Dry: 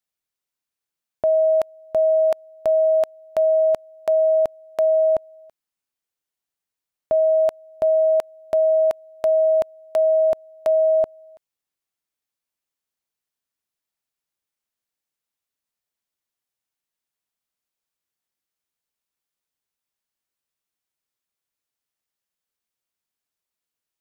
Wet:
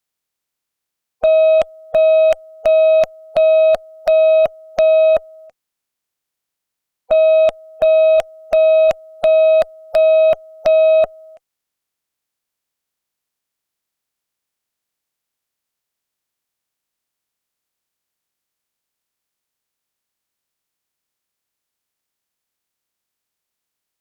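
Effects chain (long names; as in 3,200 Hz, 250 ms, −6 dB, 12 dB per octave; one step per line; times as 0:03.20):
spectral magnitudes quantised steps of 30 dB
harmonic generator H 6 −23 dB, 7 −43 dB, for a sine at −13 dBFS
level +7 dB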